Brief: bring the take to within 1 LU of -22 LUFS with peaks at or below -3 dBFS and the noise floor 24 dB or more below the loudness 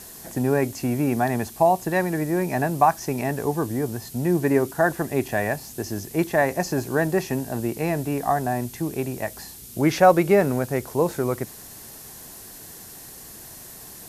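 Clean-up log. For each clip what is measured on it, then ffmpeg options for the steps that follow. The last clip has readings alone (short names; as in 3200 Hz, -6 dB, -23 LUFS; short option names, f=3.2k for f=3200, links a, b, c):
noise floor -42 dBFS; noise floor target -48 dBFS; loudness -23.5 LUFS; peak -3.5 dBFS; loudness target -22.0 LUFS
-> -af "afftdn=nr=6:nf=-42"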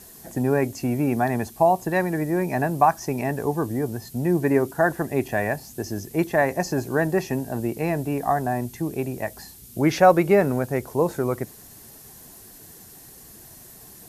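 noise floor -46 dBFS; noise floor target -48 dBFS
-> -af "afftdn=nr=6:nf=-46"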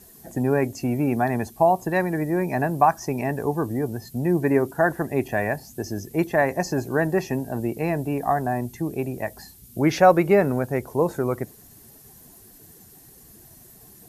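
noise floor -50 dBFS; loudness -23.5 LUFS; peak -3.5 dBFS; loudness target -22.0 LUFS
-> -af "volume=1.5dB,alimiter=limit=-3dB:level=0:latency=1"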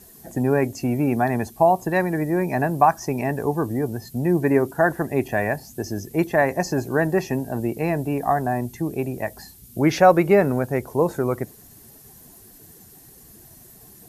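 loudness -22.0 LUFS; peak -3.0 dBFS; noise floor -48 dBFS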